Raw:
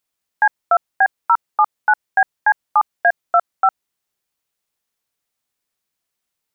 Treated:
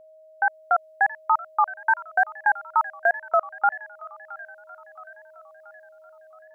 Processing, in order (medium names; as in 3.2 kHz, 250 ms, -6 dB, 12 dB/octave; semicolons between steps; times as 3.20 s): level rider gain up to 6.5 dB; on a send: feedback echo behind a high-pass 674 ms, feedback 55%, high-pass 1.8 kHz, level -10 dB; on the sum: wow and flutter 98 cents; 1.77–3.36 s: short-mantissa float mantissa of 6-bit; whistle 630 Hz -39 dBFS; trim -9 dB